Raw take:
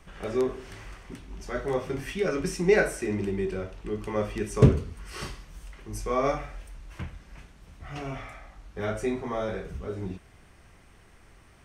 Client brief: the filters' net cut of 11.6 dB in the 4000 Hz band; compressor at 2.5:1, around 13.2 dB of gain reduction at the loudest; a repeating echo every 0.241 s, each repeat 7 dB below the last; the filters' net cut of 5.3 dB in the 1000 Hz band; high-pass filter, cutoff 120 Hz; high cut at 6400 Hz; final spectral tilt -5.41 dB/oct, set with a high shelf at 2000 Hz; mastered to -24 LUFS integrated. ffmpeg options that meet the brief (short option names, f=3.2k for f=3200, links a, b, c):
-af "highpass=120,lowpass=6.4k,equalizer=f=1k:t=o:g=-5,highshelf=f=2k:g=-6,equalizer=f=4k:t=o:g=-9,acompressor=threshold=-34dB:ratio=2.5,aecho=1:1:241|482|723|964|1205:0.447|0.201|0.0905|0.0407|0.0183,volume=14dB"